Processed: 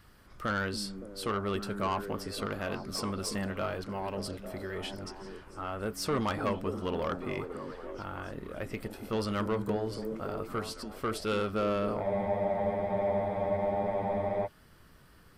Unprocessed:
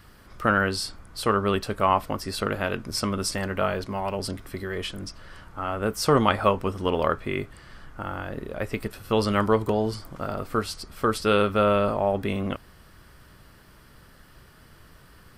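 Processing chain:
soft clipping −17 dBFS, distortion −13 dB
echo through a band-pass that steps 283 ms, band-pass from 230 Hz, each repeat 0.7 octaves, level −3 dB
frozen spectrum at 0:12.05, 2.41 s
level −7 dB

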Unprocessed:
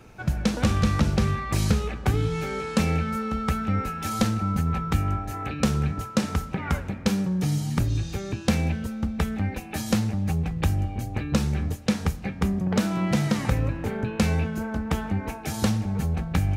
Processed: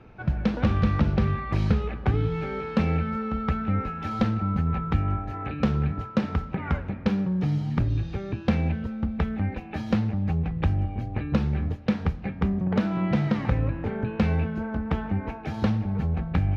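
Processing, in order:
high-frequency loss of the air 310 metres

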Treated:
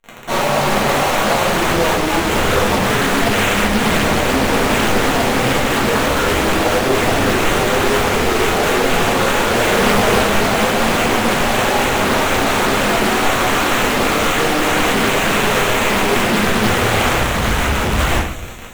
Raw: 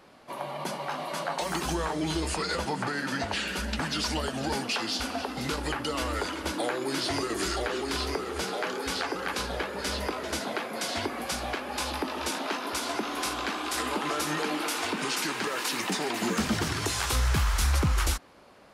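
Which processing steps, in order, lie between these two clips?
high-shelf EQ 5,100 Hz +10.5 dB
notch filter 1,000 Hz, Q 17
in parallel at +1 dB: brickwall limiter −29 dBFS, peak gain reduction 17 dB
on the sum: tuned comb filter 220 Hz, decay 0.48 s, harmonics all, mix 30%
bit reduction 7 bits
flanger 0.11 Hz, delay 8.6 ms, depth 2.2 ms, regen −44%
fuzz pedal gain 49 dB, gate −54 dBFS
decimation without filtering 9×
0:09.49–0:10.22: double-tracking delay 38 ms −3 dB
on a send: delay with a high-pass on its return 179 ms, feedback 69%, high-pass 4,500 Hz, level −12 dB
on the sum: rectangular room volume 140 cubic metres, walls mixed, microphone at 1.7 metres
highs frequency-modulated by the lows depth 0.63 ms
level −8 dB

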